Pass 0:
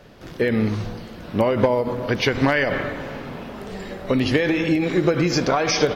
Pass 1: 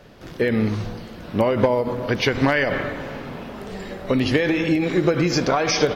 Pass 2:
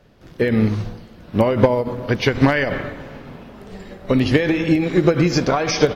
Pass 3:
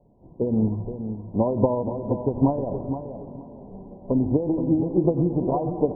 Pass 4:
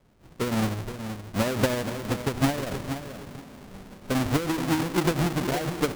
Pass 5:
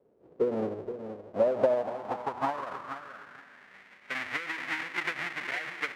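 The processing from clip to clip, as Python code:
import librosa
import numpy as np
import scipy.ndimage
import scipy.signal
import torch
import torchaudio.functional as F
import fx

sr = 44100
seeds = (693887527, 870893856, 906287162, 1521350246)

y1 = x
y2 = fx.low_shelf(y1, sr, hz=210.0, db=5.5)
y2 = fx.upward_expand(y2, sr, threshold_db=-35.0, expansion=1.5)
y2 = y2 * 10.0 ** (3.5 / 20.0)
y3 = scipy.signal.sosfilt(scipy.signal.cheby1(6, 3, 1000.0, 'lowpass', fs=sr, output='sos'), y2)
y3 = fx.echo_feedback(y3, sr, ms=472, feedback_pct=22, wet_db=-9.0)
y3 = y3 * 10.0 ** (-4.0 / 20.0)
y4 = fx.halfwave_hold(y3, sr)
y4 = y4 * 10.0 ** (-7.0 / 20.0)
y5 = fx.filter_sweep_bandpass(y4, sr, from_hz=450.0, to_hz=2000.0, start_s=1.04, end_s=3.85, q=3.9)
y5 = y5 * 10.0 ** (7.0 / 20.0)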